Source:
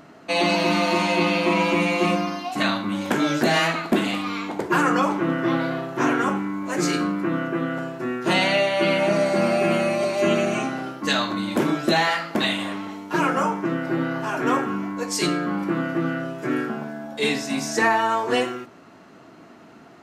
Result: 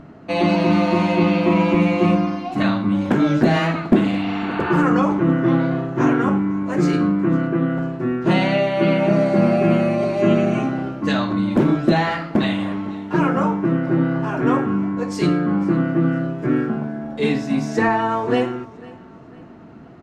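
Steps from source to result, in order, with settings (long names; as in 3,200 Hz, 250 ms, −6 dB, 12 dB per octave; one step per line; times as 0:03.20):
RIAA equalisation playback
0:04.15–0:04.76: healed spectral selection 660–4,700 Hz both
0:04.91–0:06.13: parametric band 6,500 Hz +6 dB 0.22 octaves
repeating echo 501 ms, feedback 38%, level −22 dB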